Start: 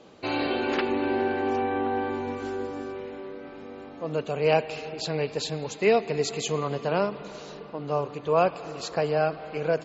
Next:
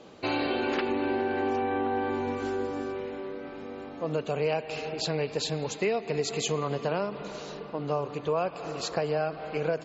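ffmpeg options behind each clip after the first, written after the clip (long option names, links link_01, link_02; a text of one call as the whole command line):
ffmpeg -i in.wav -af "acompressor=threshold=-26dB:ratio=6,volume=1.5dB" out.wav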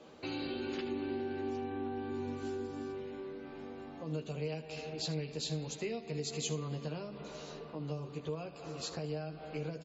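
ffmpeg -i in.wav -filter_complex "[0:a]acrossover=split=340|3000[link_01][link_02][link_03];[link_02]acompressor=threshold=-42dB:ratio=5[link_04];[link_01][link_04][link_03]amix=inputs=3:normalize=0,aecho=1:1:13|77:0.562|0.211,volume=-6.5dB" out.wav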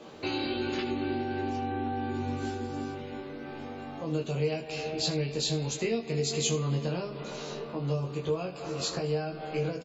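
ffmpeg -i in.wav -filter_complex "[0:a]asplit=2[link_01][link_02];[link_02]adelay=22,volume=-4dB[link_03];[link_01][link_03]amix=inputs=2:normalize=0,volume=7dB" out.wav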